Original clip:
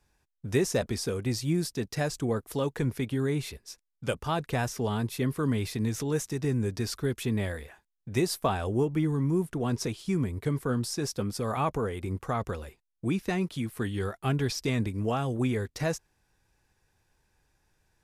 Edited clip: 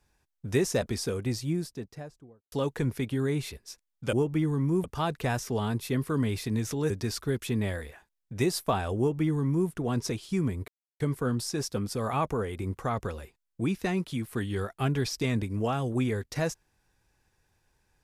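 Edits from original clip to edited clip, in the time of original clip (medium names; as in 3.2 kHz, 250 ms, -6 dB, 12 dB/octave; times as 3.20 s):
1.07–2.52 s: studio fade out
6.19–6.66 s: delete
8.74–9.45 s: copy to 4.13 s
10.44 s: insert silence 0.32 s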